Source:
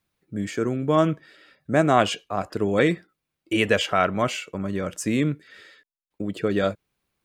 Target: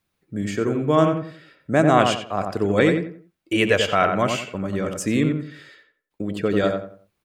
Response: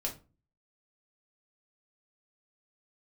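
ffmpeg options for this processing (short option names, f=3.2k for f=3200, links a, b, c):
-filter_complex "[0:a]asplit=2[a][b];[b]adelay=89,lowpass=f=1.8k:p=1,volume=-4.5dB,asplit=2[c][d];[d]adelay=89,lowpass=f=1.8k:p=1,volume=0.32,asplit=2[e][f];[f]adelay=89,lowpass=f=1.8k:p=1,volume=0.32,asplit=2[g][h];[h]adelay=89,lowpass=f=1.8k:p=1,volume=0.32[i];[a][c][e][g][i]amix=inputs=5:normalize=0,volume=1.5dB"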